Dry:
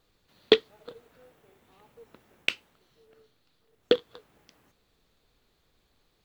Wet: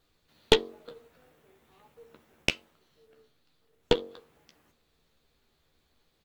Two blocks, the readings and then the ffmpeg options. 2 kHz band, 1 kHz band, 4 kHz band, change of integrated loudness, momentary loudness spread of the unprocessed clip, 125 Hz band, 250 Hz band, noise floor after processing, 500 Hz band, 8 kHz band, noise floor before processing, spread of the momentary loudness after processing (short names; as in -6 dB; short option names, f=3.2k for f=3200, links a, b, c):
-0.5 dB, +6.0 dB, 0.0 dB, -1.0 dB, 7 LU, +11.5 dB, -0.5 dB, -72 dBFS, -2.5 dB, n/a, -71 dBFS, 16 LU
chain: -filter_complex "[0:a]asplit=2[a][b];[b]adelay=13,volume=-7dB[c];[a][c]amix=inputs=2:normalize=0,bandreject=f=46.15:t=h:w=4,bandreject=f=92.3:t=h:w=4,bandreject=f=138.45:t=h:w=4,bandreject=f=184.6:t=h:w=4,bandreject=f=230.75:t=h:w=4,bandreject=f=276.9:t=h:w=4,bandreject=f=323.05:t=h:w=4,bandreject=f=369.2:t=h:w=4,bandreject=f=415.35:t=h:w=4,bandreject=f=461.5:t=h:w=4,bandreject=f=507.65:t=h:w=4,bandreject=f=553.8:t=h:w=4,bandreject=f=599.95:t=h:w=4,bandreject=f=646.1:t=h:w=4,bandreject=f=692.25:t=h:w=4,bandreject=f=738.4:t=h:w=4,bandreject=f=784.55:t=h:w=4,bandreject=f=830.7:t=h:w=4,bandreject=f=876.85:t=h:w=4,bandreject=f=923:t=h:w=4,bandreject=f=969.15:t=h:w=4,bandreject=f=1.0153k:t=h:w=4,bandreject=f=1.06145k:t=h:w=4,bandreject=f=1.1076k:t=h:w=4,bandreject=f=1.15375k:t=h:w=4,bandreject=f=1.1999k:t=h:w=4,bandreject=f=1.24605k:t=h:w=4,bandreject=f=1.2922k:t=h:w=4,aeval=exprs='0.891*(cos(1*acos(clip(val(0)/0.891,-1,1)))-cos(1*PI/2))+0.224*(cos(4*acos(clip(val(0)/0.891,-1,1)))-cos(4*PI/2))':c=same,volume=-2dB"